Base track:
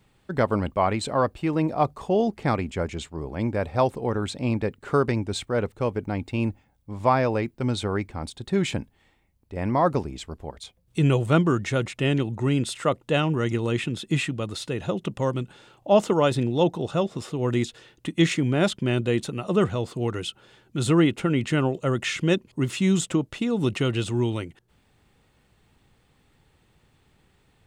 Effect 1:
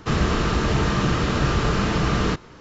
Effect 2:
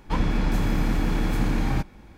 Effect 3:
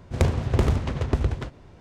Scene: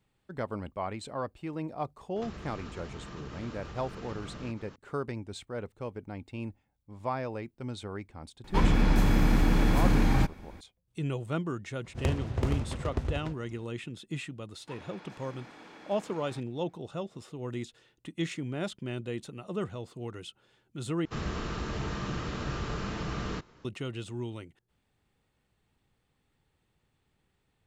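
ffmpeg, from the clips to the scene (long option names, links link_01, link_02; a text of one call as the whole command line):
ffmpeg -i bed.wav -i cue0.wav -i cue1.wav -i cue2.wav -filter_complex "[1:a]asplit=2[link_01][link_02];[2:a]asplit=2[link_03][link_04];[0:a]volume=-12.5dB[link_05];[link_01]acompressor=threshold=-34dB:ratio=6:attack=3.2:release=140:knee=1:detection=peak[link_06];[link_04]highpass=450,lowpass=6500[link_07];[link_05]asplit=2[link_08][link_09];[link_08]atrim=end=21.054[link_10];[link_02]atrim=end=2.6,asetpts=PTS-STARTPTS,volume=-13.5dB[link_11];[link_09]atrim=start=23.646[link_12];[link_06]atrim=end=2.6,asetpts=PTS-STARTPTS,volume=-7.5dB,afade=type=in:duration=0.004:curve=hsin,afade=type=out:start_time=2.596:duration=0.004:curve=hsin,adelay=2160[link_13];[link_03]atrim=end=2.17,asetpts=PTS-STARTPTS,afade=type=in:duration=0.004:curve=hsin,afade=type=out:start_time=2.166:duration=0.004:curve=hsin,adelay=8440[link_14];[3:a]atrim=end=1.8,asetpts=PTS-STARTPTS,volume=-8.5dB,afade=type=in:duration=0.004:curve=hsin,afade=type=out:start_time=1.796:duration=0.004:curve=hsin,adelay=11840[link_15];[link_07]atrim=end=2.17,asetpts=PTS-STARTPTS,volume=-17dB,afade=type=in:duration=0.004:curve=hsin,afade=type=out:start_time=2.166:duration=0.004:curve=hsin,adelay=14580[link_16];[link_10][link_11]acrossfade=duration=0.004:curve1=hsin:curve2=hsin[link_17];[link_17][link_12]acrossfade=duration=0.004:curve1=hsin:curve2=hsin[link_18];[link_18][link_13][link_14][link_15][link_16]amix=inputs=5:normalize=0" out.wav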